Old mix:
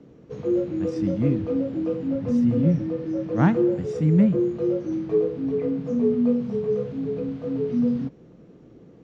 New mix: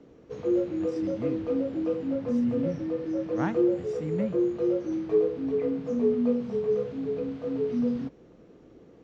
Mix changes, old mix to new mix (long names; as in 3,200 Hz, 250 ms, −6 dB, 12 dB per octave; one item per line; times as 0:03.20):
speech −6.0 dB
master: add parametric band 150 Hz −9 dB 1.5 octaves